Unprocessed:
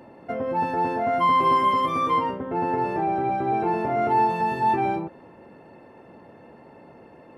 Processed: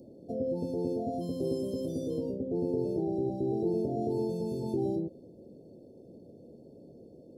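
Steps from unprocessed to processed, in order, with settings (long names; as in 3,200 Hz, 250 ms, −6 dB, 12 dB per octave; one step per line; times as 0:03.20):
inverse Chebyshev band-stop filter 1,100–2,300 Hz, stop band 60 dB
level −2 dB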